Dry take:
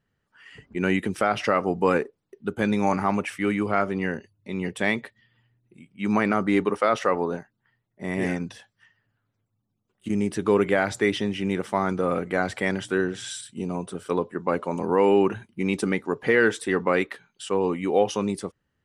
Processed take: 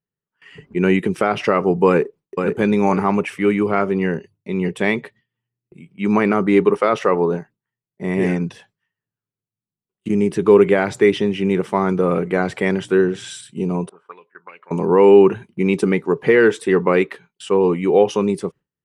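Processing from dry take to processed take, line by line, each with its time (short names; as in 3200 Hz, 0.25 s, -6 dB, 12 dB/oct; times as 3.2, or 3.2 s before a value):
1.87–2.49 echo throw 0.5 s, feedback 15%, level -5.5 dB
13.89–14.71 auto-wah 730–2600 Hz, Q 6.4, up, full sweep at -20 dBFS
whole clip: fifteen-band EQ 160 Hz +11 dB, 400 Hz +10 dB, 1000 Hz +5 dB, 2500 Hz +5 dB; gate with hold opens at -39 dBFS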